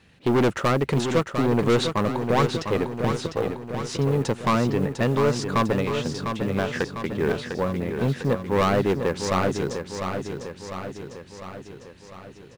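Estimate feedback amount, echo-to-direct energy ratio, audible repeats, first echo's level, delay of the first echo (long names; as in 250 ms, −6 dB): 58%, −5.0 dB, 6, −7.0 dB, 701 ms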